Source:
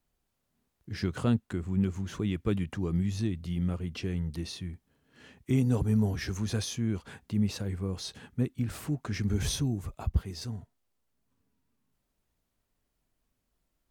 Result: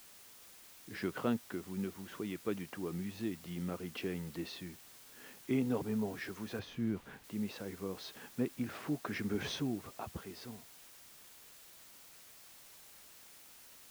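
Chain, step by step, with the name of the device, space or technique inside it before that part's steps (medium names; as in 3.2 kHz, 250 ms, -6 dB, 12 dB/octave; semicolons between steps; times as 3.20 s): shortwave radio (band-pass 280–2900 Hz; tremolo 0.22 Hz, depth 45%; white noise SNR 16 dB); 6.59–7.24 s: tone controls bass +10 dB, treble -9 dB; trim +1 dB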